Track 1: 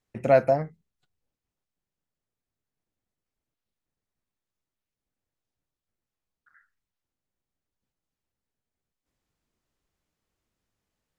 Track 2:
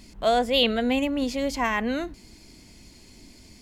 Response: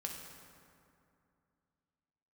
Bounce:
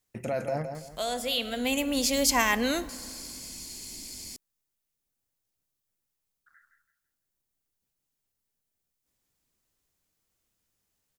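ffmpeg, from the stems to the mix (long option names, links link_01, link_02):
-filter_complex "[0:a]alimiter=limit=-20.5dB:level=0:latency=1:release=20,volume=-2.5dB,asplit=3[link_01][link_02][link_03];[link_02]volume=-7.5dB[link_04];[1:a]bass=frequency=250:gain=-2,treble=frequency=4000:gain=6,alimiter=limit=-14dB:level=0:latency=1:release=431,adelay=750,volume=-1.5dB,asplit=2[link_05][link_06];[link_06]volume=-11dB[link_07];[link_03]apad=whole_len=192403[link_08];[link_05][link_08]sidechaincompress=threshold=-42dB:ratio=8:attack=16:release=1450[link_09];[2:a]atrim=start_sample=2205[link_10];[link_07][link_10]afir=irnorm=-1:irlink=0[link_11];[link_04]aecho=0:1:166|332|498|664:1|0.3|0.09|0.027[link_12];[link_01][link_09][link_11][link_12]amix=inputs=4:normalize=0,crystalizer=i=2.5:c=0"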